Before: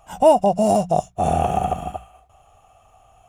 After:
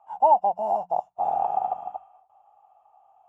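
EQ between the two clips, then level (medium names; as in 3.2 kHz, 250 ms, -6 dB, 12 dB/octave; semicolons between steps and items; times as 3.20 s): band-pass filter 870 Hz, Q 7.9; +4.0 dB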